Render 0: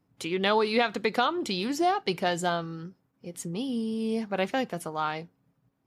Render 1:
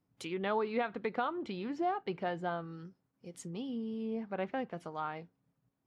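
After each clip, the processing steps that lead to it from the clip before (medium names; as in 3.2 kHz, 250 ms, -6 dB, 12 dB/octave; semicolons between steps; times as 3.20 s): low-pass that closes with the level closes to 1.9 kHz, closed at -25.5 dBFS; trim -8 dB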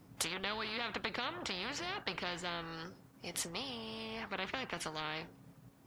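spectrum-flattening compressor 4:1; trim +2 dB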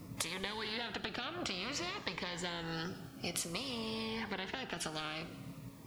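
compression 10:1, threshold -44 dBFS, peak gain reduction 13 dB; plate-style reverb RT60 2 s, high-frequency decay 1×, DRR 12.5 dB; Shepard-style phaser falling 0.54 Hz; trim +10 dB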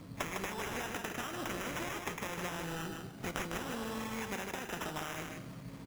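reverse; upward compressor, threshold -43 dBFS; reverse; sample-and-hold 10×; delay 154 ms -5 dB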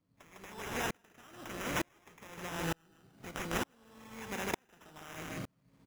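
sawtooth tremolo in dB swelling 1.1 Hz, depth 39 dB; trim +8 dB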